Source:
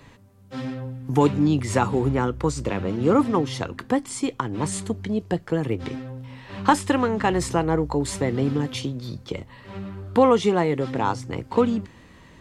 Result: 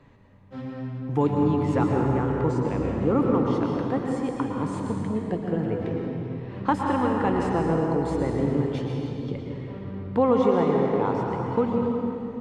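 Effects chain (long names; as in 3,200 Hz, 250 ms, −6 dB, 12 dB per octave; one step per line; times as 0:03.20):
low-pass filter 1,200 Hz 6 dB per octave
mains-hum notches 50/100 Hz
convolution reverb RT60 3.1 s, pre-delay 105 ms, DRR −0.5 dB
level −4 dB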